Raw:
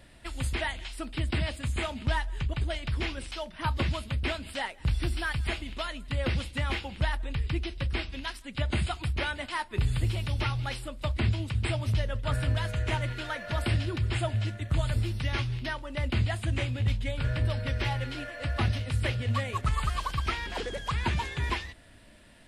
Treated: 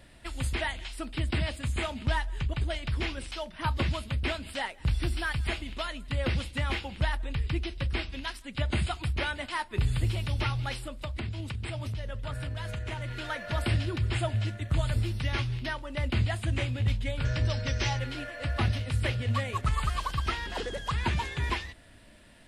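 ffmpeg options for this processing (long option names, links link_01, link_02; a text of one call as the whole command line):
ffmpeg -i in.wav -filter_complex "[0:a]asettb=1/sr,asplit=3[link_01][link_02][link_03];[link_01]atrim=end=10.874[link_04];[link_02]atrim=start=10.87:end=13.24,asetpts=PTS-STARTPTS,afade=type=in:duration=0.004:curve=qsin,afade=type=out:start_time=2.366:duration=0.004:curve=qsin,acompressor=threshold=-31dB:ratio=6:attack=3.2:release=140:knee=1:detection=peak[link_05];[link_03]atrim=start=13.236[link_06];[link_04][link_05]acrossfade=duration=0.004:curve1=hsin:curve2=qsin[link_07];[link_07][link_06]acrossfade=duration=0.004:curve1=qsin:curve2=hsin,asettb=1/sr,asplit=3[link_08][link_09][link_10];[link_08]atrim=end=17.254[link_11];[link_09]atrim=start=17.25:end=17.99,asetpts=PTS-STARTPTS,afade=type=in:duration=0.004:curve=qsin,afade=type=out:start_time=0.736:duration=0.004:curve=qsin,lowpass=frequency=6100:width_type=q:width=6[link_12];[link_10]atrim=start=17.986[link_13];[link_11][link_12]acrossfade=duration=0.004:curve1=hsin:curve2=qsin[link_14];[link_14][link_13]acrossfade=duration=0.004:curve1=qsin:curve2=hsin,asettb=1/sr,asplit=3[link_15][link_16][link_17];[link_15]atrim=end=20.104[link_18];[link_16]atrim=start=20.1:end=20.99,asetpts=PTS-STARTPTS,afade=type=in:duration=0.004:curve=qsin,afade=type=out:start_time=0.886:duration=0.004:curve=qsin,bandreject=frequency=2300:width=12[link_19];[link_17]atrim=start=20.986[link_20];[link_18][link_19]acrossfade=duration=0.004:curve1=hsin:curve2=qsin[link_21];[link_21][link_20]acrossfade=duration=0.004:curve1=qsin:curve2=hsin" out.wav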